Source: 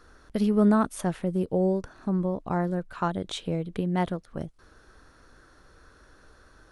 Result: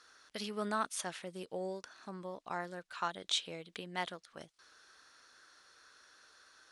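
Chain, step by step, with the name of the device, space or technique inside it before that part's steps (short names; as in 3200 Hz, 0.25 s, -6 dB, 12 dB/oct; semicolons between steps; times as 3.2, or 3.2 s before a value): piezo pickup straight into a mixer (LPF 5100 Hz 12 dB/oct; differentiator); gain +9.5 dB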